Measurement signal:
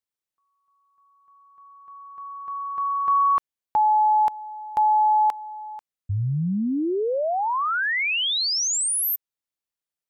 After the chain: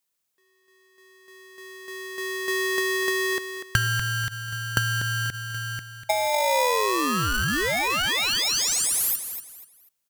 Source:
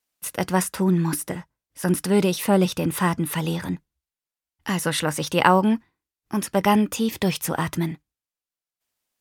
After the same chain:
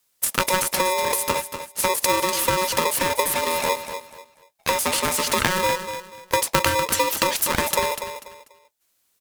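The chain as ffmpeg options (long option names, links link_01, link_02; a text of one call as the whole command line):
ffmpeg -i in.wav -af "highshelf=frequency=4300:gain=8.5,acompressor=threshold=-31dB:ratio=16:attack=47:release=89:knee=1:detection=peak,equalizer=frequency=210:width_type=o:width=0.78:gain=3.5,aecho=1:1:244|488|732:0.335|0.0938|0.0263,aeval=exprs='val(0)*sgn(sin(2*PI*740*n/s))':channel_layout=same,volume=6dB" out.wav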